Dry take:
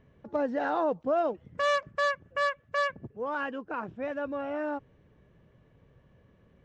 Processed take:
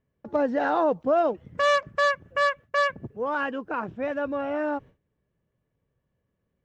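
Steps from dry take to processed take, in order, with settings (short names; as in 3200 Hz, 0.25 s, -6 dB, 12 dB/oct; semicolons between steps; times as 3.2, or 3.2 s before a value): gate with hold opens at -48 dBFS; gain +5 dB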